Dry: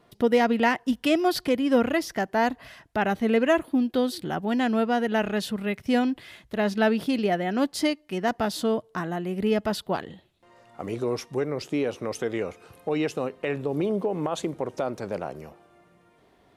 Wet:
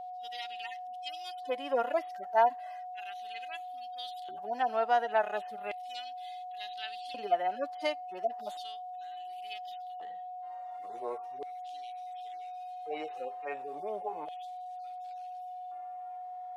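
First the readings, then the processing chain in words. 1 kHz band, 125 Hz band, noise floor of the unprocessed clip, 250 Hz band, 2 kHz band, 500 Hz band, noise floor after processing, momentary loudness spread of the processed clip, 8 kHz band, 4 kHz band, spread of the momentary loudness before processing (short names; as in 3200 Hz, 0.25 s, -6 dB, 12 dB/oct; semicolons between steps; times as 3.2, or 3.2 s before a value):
-2.5 dB, under -30 dB, -61 dBFS, -26.5 dB, -11.5 dB, -10.0 dB, -43 dBFS, 12 LU, under -20 dB, -9.0 dB, 10 LU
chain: median-filter separation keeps harmonic; LFO high-pass square 0.35 Hz 750–3500 Hz; whine 730 Hz -34 dBFS; gain -5.5 dB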